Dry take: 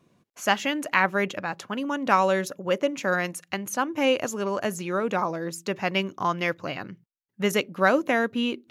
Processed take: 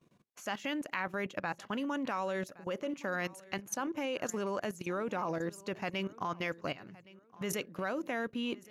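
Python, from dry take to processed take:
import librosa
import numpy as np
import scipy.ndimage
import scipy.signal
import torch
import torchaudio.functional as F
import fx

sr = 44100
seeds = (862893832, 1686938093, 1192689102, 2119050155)

y = fx.level_steps(x, sr, step_db=16)
y = fx.echo_feedback(y, sr, ms=1117, feedback_pct=29, wet_db=-21)
y = y * 10.0 ** (-2.5 / 20.0)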